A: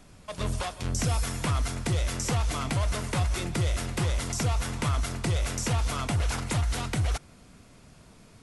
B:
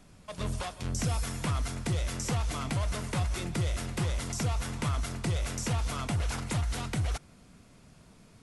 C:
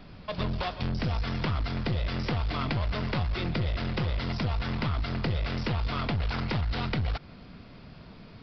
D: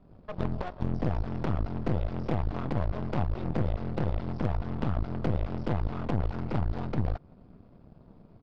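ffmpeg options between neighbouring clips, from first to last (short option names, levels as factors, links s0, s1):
-af "equalizer=f=180:t=o:w=0.83:g=3,volume=0.631"
-af "acompressor=threshold=0.0224:ratio=4,aresample=11025,aeval=exprs='clip(val(0),-1,0.0133)':c=same,aresample=44100,volume=2.66"
-af "firequalizer=gain_entry='entry(600,0);entry(1900,-17);entry(4200,-20)':delay=0.05:min_phase=1,aeval=exprs='0.0944*(cos(1*acos(clip(val(0)/0.0944,-1,1)))-cos(1*PI/2))+0.0211*(cos(3*acos(clip(val(0)/0.0944,-1,1)))-cos(3*PI/2))+0.00596*(cos(8*acos(clip(val(0)/0.0944,-1,1)))-cos(8*PI/2))':c=same,volume=1.41"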